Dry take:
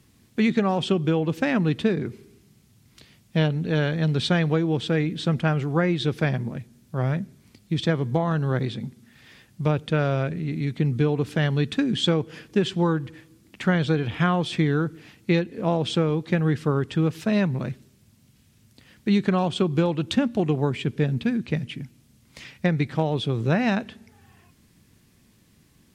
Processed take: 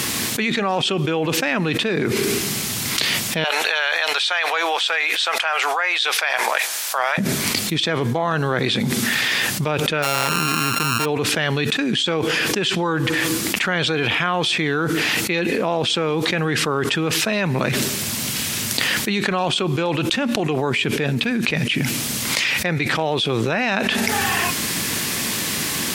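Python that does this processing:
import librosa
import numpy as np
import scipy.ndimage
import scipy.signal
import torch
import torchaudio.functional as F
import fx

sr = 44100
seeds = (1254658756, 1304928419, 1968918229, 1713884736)

y = fx.highpass(x, sr, hz=710.0, slope=24, at=(3.44, 7.18))
y = fx.sample_sort(y, sr, block=32, at=(10.02, 11.04), fade=0.02)
y = fx.highpass(y, sr, hz=870.0, slope=6)
y = fx.dynamic_eq(y, sr, hz=2500.0, q=7.3, threshold_db=-52.0, ratio=4.0, max_db=4)
y = fx.env_flatten(y, sr, amount_pct=100)
y = y * librosa.db_to_amplitude(1.5)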